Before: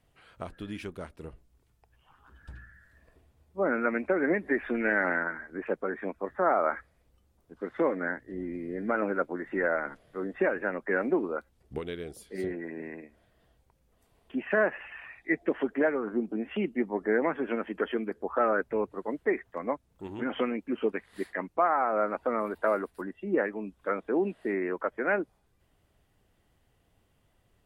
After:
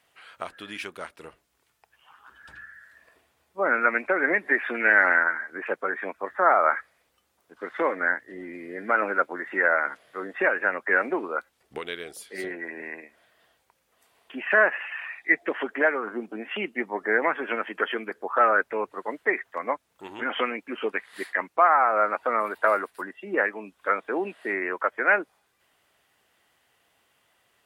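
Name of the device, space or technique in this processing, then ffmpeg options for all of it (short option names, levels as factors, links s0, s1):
filter by subtraction: -filter_complex "[0:a]asplit=2[s0][s1];[s1]lowpass=1600,volume=-1[s2];[s0][s2]amix=inputs=2:normalize=0,volume=2.51"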